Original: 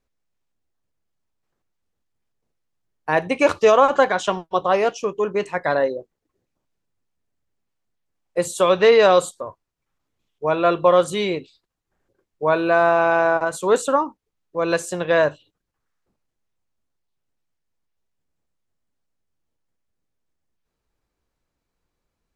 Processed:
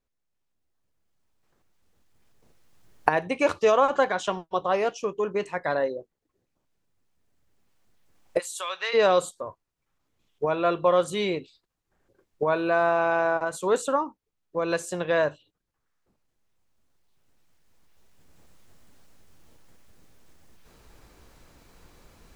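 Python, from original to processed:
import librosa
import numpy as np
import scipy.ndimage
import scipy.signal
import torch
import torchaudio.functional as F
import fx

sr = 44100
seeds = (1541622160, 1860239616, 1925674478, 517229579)

y = fx.recorder_agc(x, sr, target_db=-11.5, rise_db_per_s=9.1, max_gain_db=30)
y = fx.highpass(y, sr, hz=1400.0, slope=12, at=(8.38, 8.93), fade=0.02)
y = y * 10.0 ** (-6.0 / 20.0)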